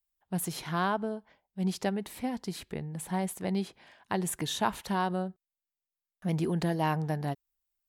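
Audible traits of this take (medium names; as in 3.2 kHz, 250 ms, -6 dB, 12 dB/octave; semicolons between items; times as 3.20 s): noise floor -92 dBFS; spectral tilt -5.5 dB/octave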